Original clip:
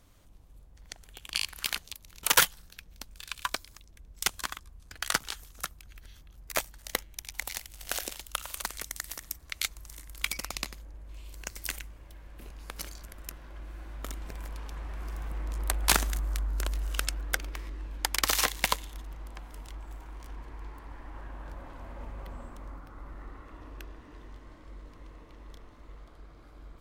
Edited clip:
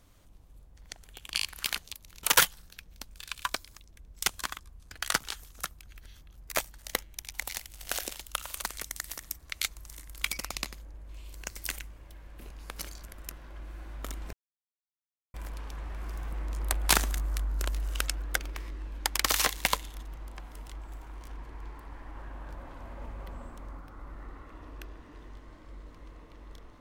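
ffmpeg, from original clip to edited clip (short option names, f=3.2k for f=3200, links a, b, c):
-filter_complex "[0:a]asplit=2[a][b];[a]atrim=end=14.33,asetpts=PTS-STARTPTS,afade=t=out:st=14.326:d=0.004:c=hsin,apad=pad_dur=1.01[c];[b]atrim=start=14.33,asetpts=PTS-STARTPTS,afade=t=in:d=0.004:c=hsin[d];[c][d]concat=n=2:v=0:a=1"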